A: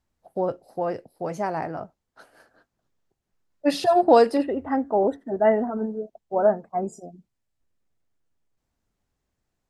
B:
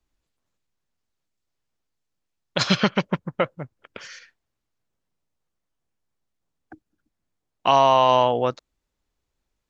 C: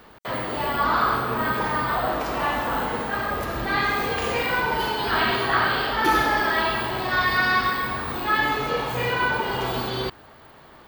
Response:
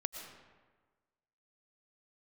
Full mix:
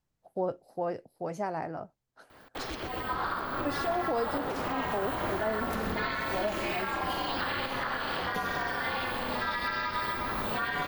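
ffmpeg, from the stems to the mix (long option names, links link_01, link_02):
-filter_complex "[0:a]volume=-5.5dB[link_01];[1:a]asoftclip=type=tanh:threshold=-22dB,volume=-10dB,asplit=2[link_02][link_03];[2:a]dynaudnorm=framelen=510:gausssize=5:maxgain=11.5dB,adelay=2300,volume=-4dB[link_04];[link_03]apad=whole_len=581209[link_05];[link_04][link_05]sidechaincompress=threshold=-39dB:ratio=8:attack=6.7:release=605[link_06];[link_02][link_06]amix=inputs=2:normalize=0,aeval=exprs='val(0)*sin(2*PI*130*n/s)':channel_layout=same,acompressor=threshold=-24dB:ratio=2.5,volume=0dB[link_07];[link_01][link_07]amix=inputs=2:normalize=0,alimiter=limit=-20.5dB:level=0:latency=1:release=272"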